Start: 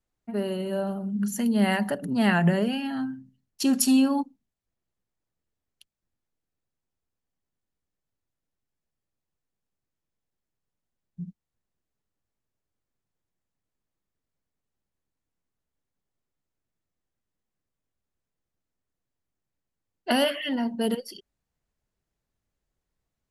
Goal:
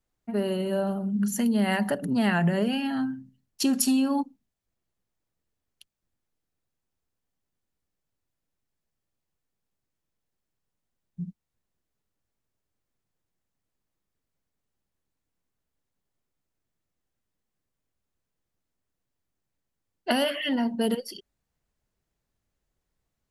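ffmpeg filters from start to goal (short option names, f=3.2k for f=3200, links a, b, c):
-af "acompressor=threshold=-22dB:ratio=6,volume=2dB"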